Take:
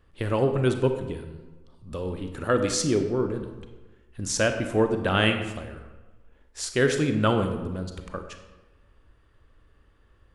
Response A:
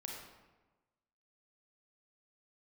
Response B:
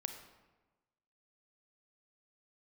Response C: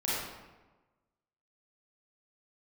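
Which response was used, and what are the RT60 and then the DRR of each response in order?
B; 1.2 s, 1.2 s, 1.2 s; -1.5 dB, 6.0 dB, -9.0 dB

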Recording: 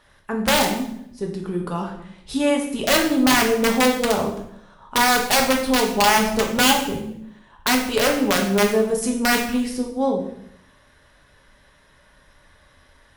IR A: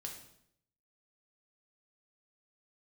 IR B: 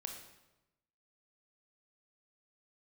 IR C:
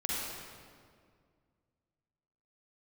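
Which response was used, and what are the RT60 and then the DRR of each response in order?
A; 0.70 s, 1.0 s, 2.1 s; 0.5 dB, 3.0 dB, -6.0 dB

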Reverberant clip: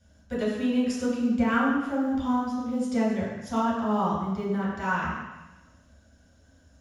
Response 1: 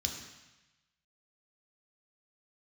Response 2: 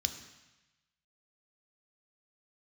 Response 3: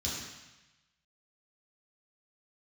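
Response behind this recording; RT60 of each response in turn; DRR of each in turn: 3; 1.0 s, 1.0 s, 1.0 s; 1.0 dB, 6.0 dB, -7.5 dB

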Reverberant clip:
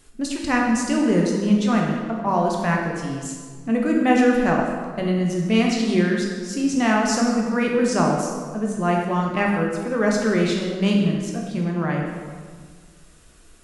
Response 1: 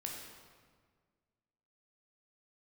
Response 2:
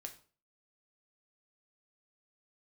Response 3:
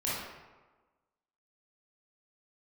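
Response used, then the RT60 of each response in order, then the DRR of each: 1; 1.7 s, 0.40 s, 1.3 s; -1.0 dB, 4.0 dB, -8.5 dB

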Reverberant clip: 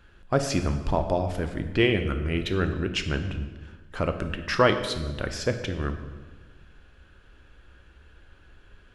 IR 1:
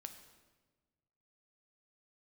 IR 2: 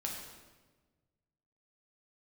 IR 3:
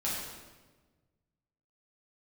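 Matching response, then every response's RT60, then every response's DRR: 1; 1.3 s, 1.3 s, 1.3 s; 6.5 dB, -1.5 dB, -7.5 dB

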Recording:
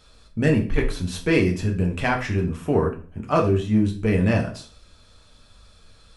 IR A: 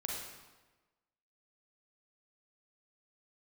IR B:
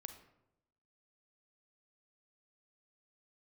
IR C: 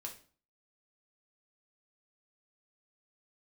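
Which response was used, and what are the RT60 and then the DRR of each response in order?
C; 1.2 s, 0.85 s, 0.40 s; -2.0 dB, 7.5 dB, 0.0 dB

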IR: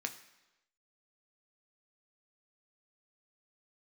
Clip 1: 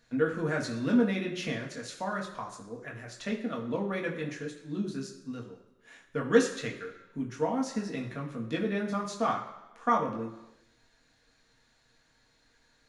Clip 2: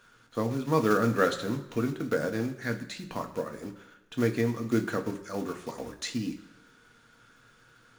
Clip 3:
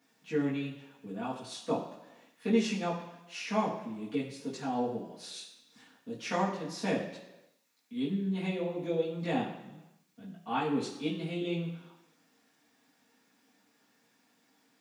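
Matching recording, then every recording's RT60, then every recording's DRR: 2; 1.0 s, 1.0 s, 1.0 s; -1.0 dB, 5.0 dB, -9.0 dB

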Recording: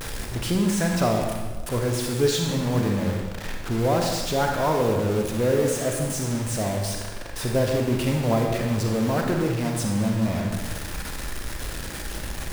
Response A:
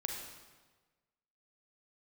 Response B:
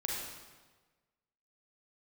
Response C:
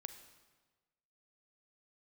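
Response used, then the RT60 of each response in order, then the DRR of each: A; 1.3 s, 1.3 s, 1.3 s; 1.0 dB, -3.0 dB, 8.5 dB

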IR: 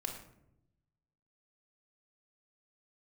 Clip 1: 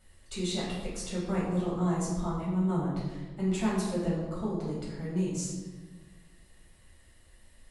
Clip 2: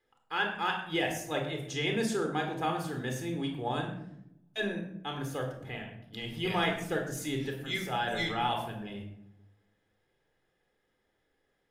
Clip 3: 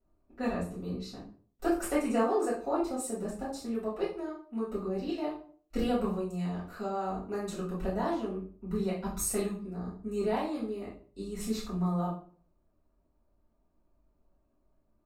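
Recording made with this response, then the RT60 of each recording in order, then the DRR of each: 2; 1.3 s, 0.80 s, 0.50 s; -7.0 dB, 2.5 dB, -9.5 dB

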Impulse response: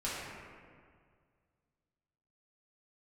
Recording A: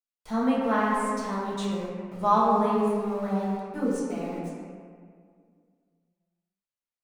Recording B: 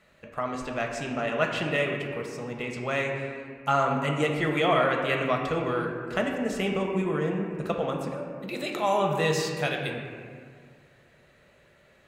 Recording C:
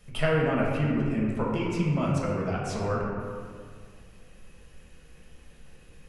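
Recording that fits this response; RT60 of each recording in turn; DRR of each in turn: A; 2.0 s, 2.0 s, 2.0 s; -9.0 dB, 1.0 dB, -4.5 dB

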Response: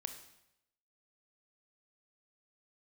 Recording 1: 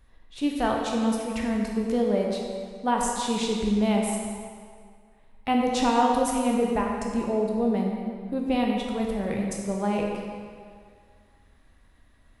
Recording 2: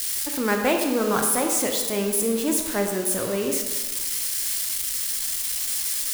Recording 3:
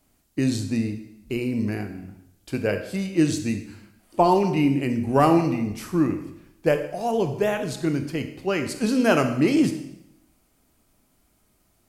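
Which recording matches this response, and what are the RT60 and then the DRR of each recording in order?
3; 2.0 s, 1.4 s, 0.80 s; -1.0 dB, 2.5 dB, 7.0 dB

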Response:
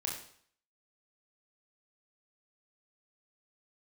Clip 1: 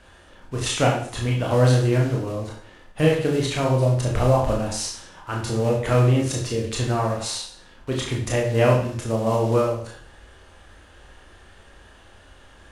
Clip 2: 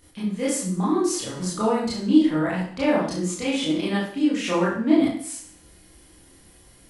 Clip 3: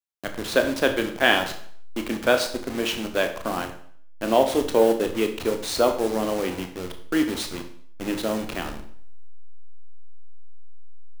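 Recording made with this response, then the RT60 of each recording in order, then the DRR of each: 1; 0.60 s, 0.60 s, 0.60 s; -2.0 dB, -8.0 dB, 5.5 dB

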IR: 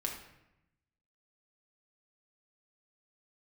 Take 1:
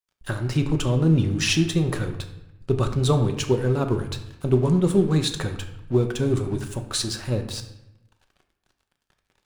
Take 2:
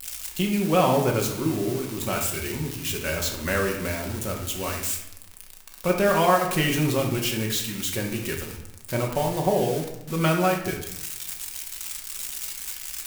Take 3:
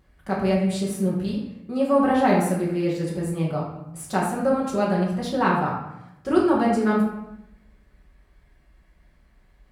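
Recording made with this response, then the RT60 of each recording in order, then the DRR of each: 2; 0.90 s, 0.90 s, 0.85 s; 5.5 dB, -0.5 dB, -5.5 dB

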